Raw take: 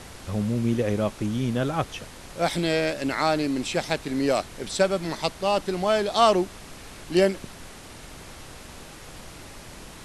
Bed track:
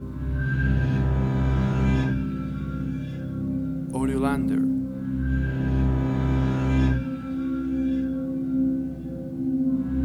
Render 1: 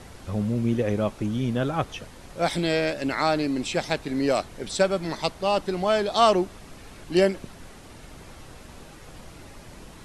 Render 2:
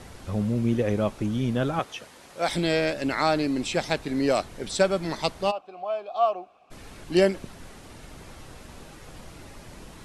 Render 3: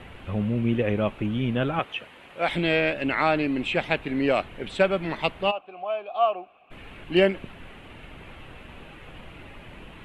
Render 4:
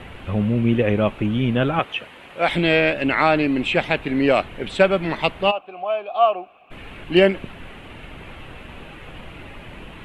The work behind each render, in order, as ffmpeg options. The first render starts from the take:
ffmpeg -i in.wav -af "afftdn=noise_reduction=6:noise_floor=-44" out.wav
ffmpeg -i in.wav -filter_complex "[0:a]asettb=1/sr,asplit=3[link_01][link_02][link_03];[link_01]atrim=end=1.794[link_04];[link_02]atrim=start=1.79:end=2.49,asetpts=PTS-STARTPTS,afade=type=in:duration=0.004:curve=qsin,afade=type=out:start_time=0.696:duration=0.004:curve=qsin,highpass=frequency=470:poles=1[link_05];[link_03]atrim=start=2.486[link_06];[link_04][link_05]acrossfade=duration=0.004:curve1=hsin:curve2=qsin[link_07];[link_07][link_06]acrossfade=duration=0.004:curve1=qsin:curve2=hsin,asplit=3[link_08][link_09][link_10];[link_08]afade=type=out:start_time=5.5:duration=0.02[link_11];[link_09]asplit=3[link_12][link_13][link_14];[link_12]bandpass=frequency=730:width_type=q:width=8,volume=0dB[link_15];[link_13]bandpass=frequency=1090:width_type=q:width=8,volume=-6dB[link_16];[link_14]bandpass=frequency=2440:width_type=q:width=8,volume=-9dB[link_17];[link_15][link_16][link_17]amix=inputs=3:normalize=0,afade=type=in:start_time=5.5:duration=0.02,afade=type=out:start_time=6.7:duration=0.02[link_18];[link_10]afade=type=in:start_time=6.7:duration=0.02[link_19];[link_11][link_18][link_19]amix=inputs=3:normalize=0" out.wav
ffmpeg -i in.wav -af "highshelf=frequency=3900:width_type=q:width=3:gain=-12" out.wav
ffmpeg -i in.wav -af "volume=5.5dB,alimiter=limit=-3dB:level=0:latency=1" out.wav

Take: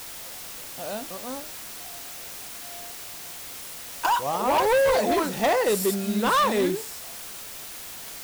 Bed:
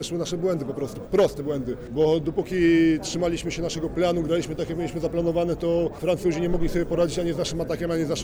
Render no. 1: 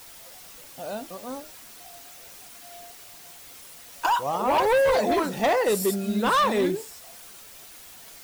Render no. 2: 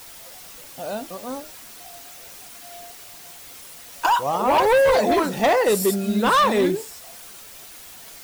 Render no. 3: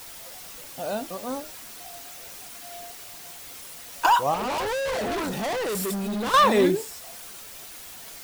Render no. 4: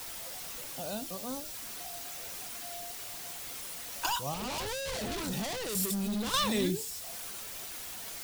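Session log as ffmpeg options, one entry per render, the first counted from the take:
ffmpeg -i in.wav -af "afftdn=noise_reduction=8:noise_floor=-39" out.wav
ffmpeg -i in.wav -af "volume=4dB" out.wav
ffmpeg -i in.wav -filter_complex "[0:a]asettb=1/sr,asplit=3[link_01][link_02][link_03];[link_01]atrim=end=4.344[link_04];[link_02]atrim=start=4.34:end=6.34,asetpts=PTS-STARTPTS,afade=type=in:duration=0.004:curve=qsin,afade=type=out:start_time=1.996:duration=0.004:curve=qsin,volume=26.5dB,asoftclip=hard,volume=-26.5dB[link_05];[link_03]atrim=start=6.336[link_06];[link_04][link_05]acrossfade=duration=0.004:curve1=hsin:curve2=qsin[link_07];[link_07][link_06]acrossfade=duration=0.004:curve1=qsin:curve2=hsin" out.wav
ffmpeg -i in.wav -filter_complex "[0:a]acrossover=split=200|3000[link_01][link_02][link_03];[link_02]acompressor=threshold=-47dB:ratio=2[link_04];[link_01][link_04][link_03]amix=inputs=3:normalize=0" out.wav

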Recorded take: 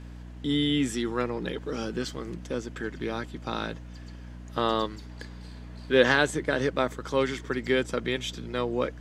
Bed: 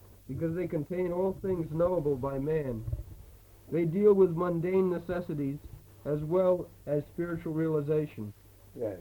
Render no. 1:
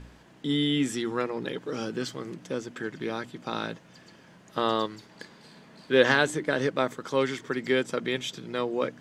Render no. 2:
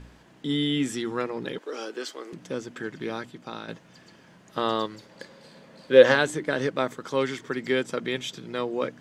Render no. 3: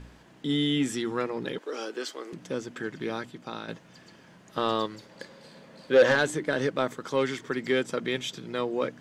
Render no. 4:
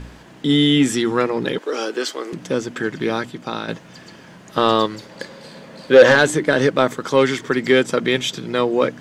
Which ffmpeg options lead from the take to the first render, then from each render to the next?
ffmpeg -i in.wav -af "bandreject=frequency=60:width_type=h:width=4,bandreject=frequency=120:width_type=h:width=4,bandreject=frequency=180:width_type=h:width=4,bandreject=frequency=240:width_type=h:width=4,bandreject=frequency=300:width_type=h:width=4" out.wav
ffmpeg -i in.wav -filter_complex "[0:a]asettb=1/sr,asplit=3[link_01][link_02][link_03];[link_01]atrim=end=1.584[link_04];[link_02]atrim=start=1.58:end=2.33,asetpts=PTS-STARTPTS,afade=type=in:duration=0.004:curve=qsin,afade=type=out:start_time=0.746:duration=0.004:curve=qsin,highpass=frequency=340:width=0.5412,highpass=frequency=340:width=1.3066[link_05];[link_03]atrim=start=2.326[link_06];[link_04][link_05]acrossfade=duration=0.004:curve1=hsin:curve2=qsin[link_07];[link_07][link_06]acrossfade=duration=0.004:curve1=qsin:curve2=hsin,asettb=1/sr,asplit=3[link_08][link_09][link_10];[link_08]atrim=end=4.944[link_11];[link_09]atrim=start=4.94:end=6.16,asetpts=PTS-STARTPTS,afade=type=in:duration=0.004:curve=qsin,afade=type=out:start_time=1.216:duration=0.004:curve=qsin,equalizer=frequency=540:width_type=o:width=0.2:gain=13.5[link_12];[link_10]atrim=start=6.156[link_13];[link_11][link_12]acrossfade=duration=0.004:curve1=hsin:curve2=qsin[link_14];[link_14][link_13]acrossfade=duration=0.004:curve1=qsin:curve2=hsin,asplit=2[link_15][link_16];[link_15]atrim=end=3.68,asetpts=PTS-STARTPTS,afade=type=out:start_time=3.16:duration=0.52:silence=0.375837[link_17];[link_16]atrim=start=3.68,asetpts=PTS-STARTPTS,afade=type=in:duration=0.004:curve=hsin:silence=0.375837[link_18];[link_17][link_18]concat=n=2:v=0:a=1" out.wav
ffmpeg -i in.wav -af "asoftclip=type=tanh:threshold=-12.5dB" out.wav
ffmpeg -i in.wav -af "volume=11dB,alimiter=limit=-3dB:level=0:latency=1" out.wav

